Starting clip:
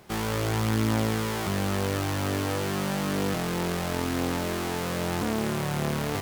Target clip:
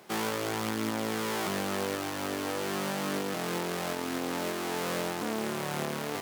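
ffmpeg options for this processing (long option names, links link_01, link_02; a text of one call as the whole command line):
ffmpeg -i in.wav -af "highpass=230,alimiter=limit=-18dB:level=0:latency=1:release=418" out.wav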